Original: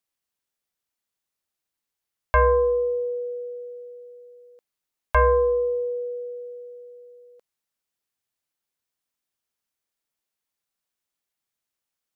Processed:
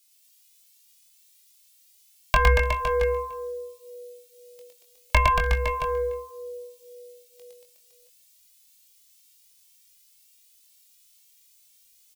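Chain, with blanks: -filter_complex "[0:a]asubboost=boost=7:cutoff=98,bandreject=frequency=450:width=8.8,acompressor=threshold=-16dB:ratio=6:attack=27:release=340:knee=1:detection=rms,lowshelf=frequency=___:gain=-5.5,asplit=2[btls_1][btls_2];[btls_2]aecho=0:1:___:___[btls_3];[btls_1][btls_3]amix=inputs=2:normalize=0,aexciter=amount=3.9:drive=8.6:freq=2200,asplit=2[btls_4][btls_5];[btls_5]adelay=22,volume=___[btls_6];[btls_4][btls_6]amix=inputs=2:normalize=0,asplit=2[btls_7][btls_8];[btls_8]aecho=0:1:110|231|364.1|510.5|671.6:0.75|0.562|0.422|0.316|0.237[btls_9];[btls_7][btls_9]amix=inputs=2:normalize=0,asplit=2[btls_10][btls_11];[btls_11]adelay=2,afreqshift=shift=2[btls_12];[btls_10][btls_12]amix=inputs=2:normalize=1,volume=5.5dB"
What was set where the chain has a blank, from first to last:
140, 294, 0.0891, -6dB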